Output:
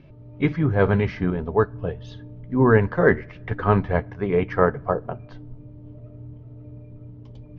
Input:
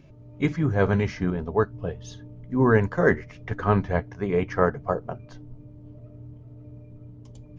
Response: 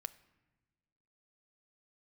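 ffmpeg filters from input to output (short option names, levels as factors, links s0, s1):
-filter_complex "[0:a]lowpass=f=4500:w=0.5412,lowpass=f=4500:w=1.3066,asplit=2[s0][s1];[1:a]atrim=start_sample=2205,lowpass=5100[s2];[s1][s2]afir=irnorm=-1:irlink=0,volume=0.562[s3];[s0][s3]amix=inputs=2:normalize=0"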